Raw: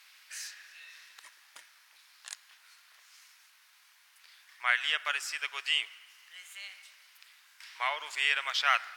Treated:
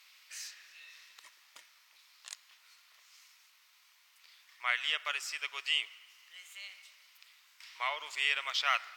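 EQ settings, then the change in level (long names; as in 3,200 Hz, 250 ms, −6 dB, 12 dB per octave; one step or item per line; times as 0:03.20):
thirty-one-band graphic EQ 800 Hz −4 dB, 1,600 Hz −8 dB, 10,000 Hz −7 dB
−1.5 dB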